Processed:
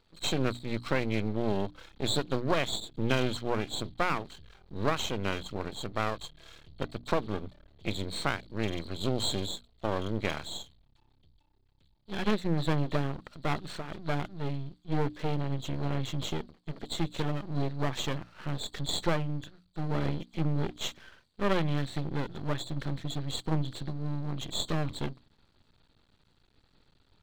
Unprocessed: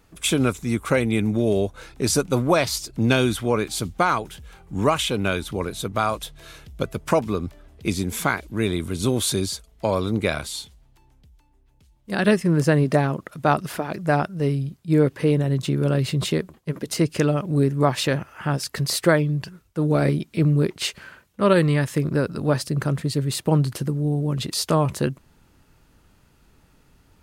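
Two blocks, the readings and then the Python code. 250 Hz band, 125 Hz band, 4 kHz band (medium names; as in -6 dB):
-11.0 dB, -10.5 dB, -6.0 dB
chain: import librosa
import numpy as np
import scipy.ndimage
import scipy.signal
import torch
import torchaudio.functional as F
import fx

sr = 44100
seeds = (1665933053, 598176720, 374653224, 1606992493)

y = fx.freq_compress(x, sr, knee_hz=3100.0, ratio=4.0)
y = np.maximum(y, 0.0)
y = fx.hum_notches(y, sr, base_hz=60, count=5)
y = y * librosa.db_to_amplitude(-6.0)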